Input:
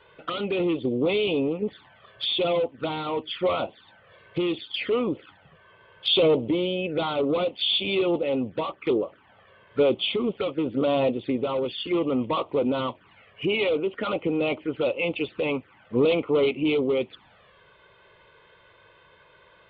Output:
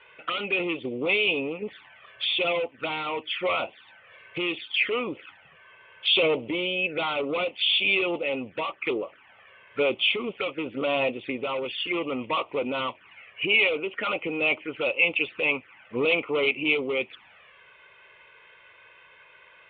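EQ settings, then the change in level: resonant low-pass 2.5 kHz, resonance Q 3.2; bass shelf 430 Hz -10 dB; 0.0 dB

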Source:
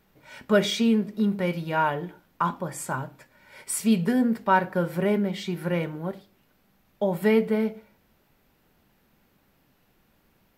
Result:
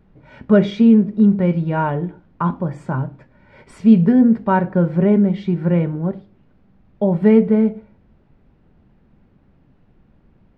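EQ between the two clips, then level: tape spacing loss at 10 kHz 37 dB; bass shelf 310 Hz +11 dB; treble shelf 4.6 kHz +4.5 dB; +4.5 dB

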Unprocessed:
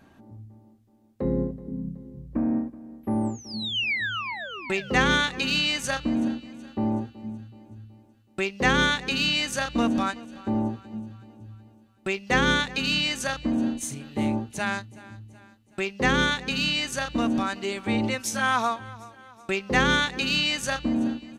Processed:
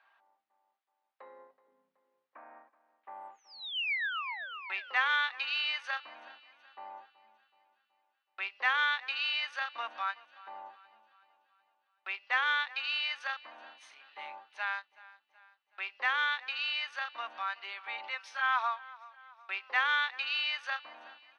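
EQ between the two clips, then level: boxcar filter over 6 samples; high-pass 910 Hz 24 dB/octave; distance through air 120 m; -3.0 dB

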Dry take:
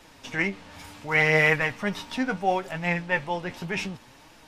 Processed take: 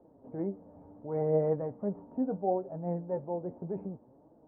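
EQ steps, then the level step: high-pass 270 Hz 6 dB/octave; inverse Chebyshev low-pass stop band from 3.6 kHz, stop band 80 dB; 0.0 dB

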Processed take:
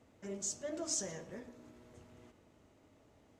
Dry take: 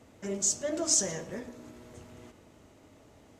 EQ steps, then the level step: treble shelf 5.8 kHz -5 dB; -8.5 dB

